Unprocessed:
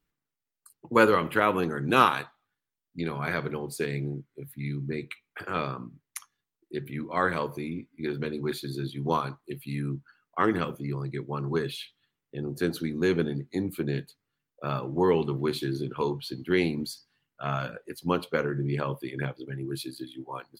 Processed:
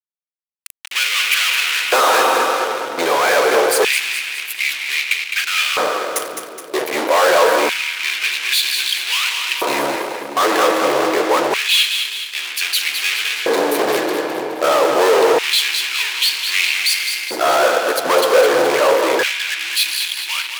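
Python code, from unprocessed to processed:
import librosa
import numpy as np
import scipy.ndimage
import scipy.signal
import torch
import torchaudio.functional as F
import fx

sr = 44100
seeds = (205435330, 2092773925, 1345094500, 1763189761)

p1 = fx.low_shelf(x, sr, hz=270.0, db=-11.0)
p2 = fx.leveller(p1, sr, passes=3)
p3 = fx.level_steps(p2, sr, step_db=16)
p4 = p2 + (p3 * 10.0 ** (0.5 / 20.0))
p5 = fx.rev_fdn(p4, sr, rt60_s=2.4, lf_ratio=1.55, hf_ratio=0.7, size_ms=19.0, drr_db=16.0)
p6 = fx.fuzz(p5, sr, gain_db=39.0, gate_db=-40.0)
p7 = p6 + fx.echo_split(p6, sr, split_hz=430.0, low_ms=533, high_ms=210, feedback_pct=52, wet_db=-7.0, dry=0)
p8 = fx.filter_lfo_highpass(p7, sr, shape='square', hz=0.26, low_hz=530.0, high_hz=2500.0, q=2.7)
y = p8 * 10.0 ** (-2.0 / 20.0)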